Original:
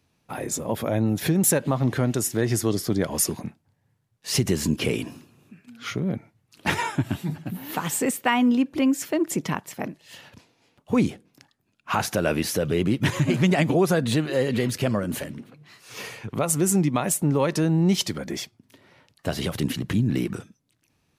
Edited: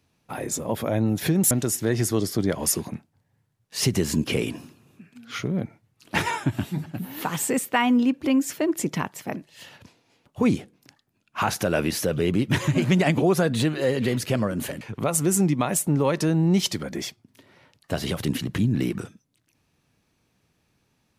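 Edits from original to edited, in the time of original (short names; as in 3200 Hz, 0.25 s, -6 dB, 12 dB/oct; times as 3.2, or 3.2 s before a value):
1.51–2.03 cut
15.33–16.16 cut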